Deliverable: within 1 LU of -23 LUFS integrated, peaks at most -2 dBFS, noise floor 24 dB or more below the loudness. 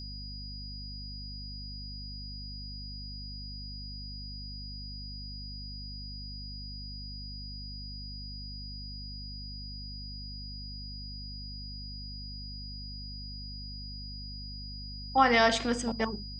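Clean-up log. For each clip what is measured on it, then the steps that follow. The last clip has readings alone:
hum 50 Hz; harmonics up to 250 Hz; hum level -40 dBFS; steady tone 4900 Hz; tone level -43 dBFS; loudness -36.0 LUFS; peak -9.5 dBFS; loudness target -23.0 LUFS
-> de-hum 50 Hz, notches 5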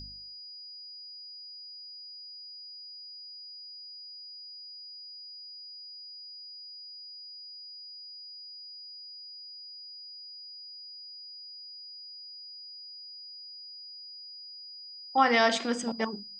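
hum none; steady tone 4900 Hz; tone level -43 dBFS
-> notch 4900 Hz, Q 30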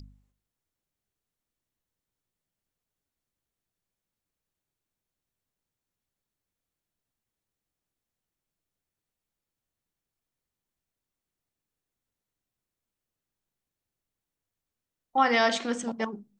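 steady tone none; loudness -26.5 LUFS; peak -10.0 dBFS; loudness target -23.0 LUFS
-> gain +3.5 dB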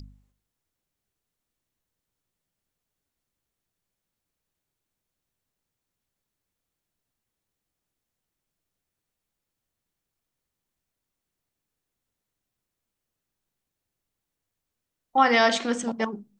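loudness -23.0 LUFS; peak -6.5 dBFS; noise floor -85 dBFS

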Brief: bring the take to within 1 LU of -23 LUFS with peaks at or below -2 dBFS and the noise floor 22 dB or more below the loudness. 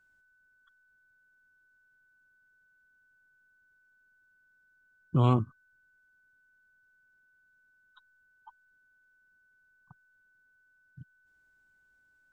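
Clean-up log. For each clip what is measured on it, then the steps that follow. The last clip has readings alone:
steady tone 1500 Hz; tone level -65 dBFS; loudness -28.0 LUFS; peak -11.0 dBFS; loudness target -23.0 LUFS
-> notch 1500 Hz, Q 30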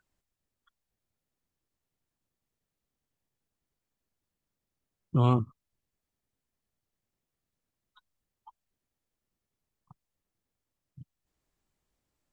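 steady tone none; loudness -28.0 LUFS; peak -11.0 dBFS; loudness target -23.0 LUFS
-> gain +5 dB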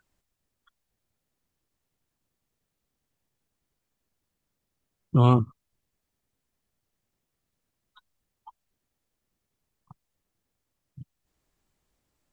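loudness -23.0 LUFS; peak -6.0 dBFS; noise floor -83 dBFS

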